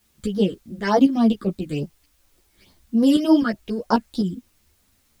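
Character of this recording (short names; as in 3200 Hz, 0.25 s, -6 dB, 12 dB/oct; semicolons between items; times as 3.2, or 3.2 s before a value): tremolo saw up 3.8 Hz, depth 60%; phasing stages 8, 3.4 Hz, lowest notch 750–2700 Hz; a quantiser's noise floor 12-bit, dither triangular; a shimmering, thickened sound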